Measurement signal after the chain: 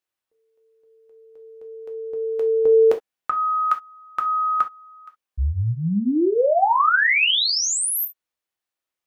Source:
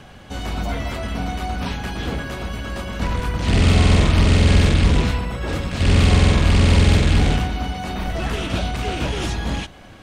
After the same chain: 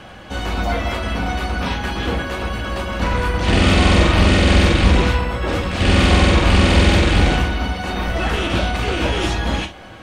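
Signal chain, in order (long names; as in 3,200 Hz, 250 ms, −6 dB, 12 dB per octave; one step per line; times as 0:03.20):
bass and treble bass −6 dB, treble −6 dB
reverb whose tail is shaped and stops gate 90 ms falling, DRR 3.5 dB
level +5 dB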